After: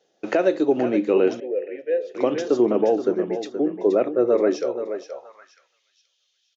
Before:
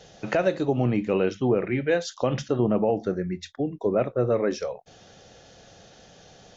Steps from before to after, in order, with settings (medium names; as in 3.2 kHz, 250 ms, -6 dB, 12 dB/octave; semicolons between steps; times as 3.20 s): gate -41 dBFS, range -19 dB; on a send: feedback delay 475 ms, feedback 35%, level -10 dB; on the sum: high-pass sweep 330 Hz -> 3.2 kHz, 4.85–5.87 s; 1.40–2.15 s: vowel filter e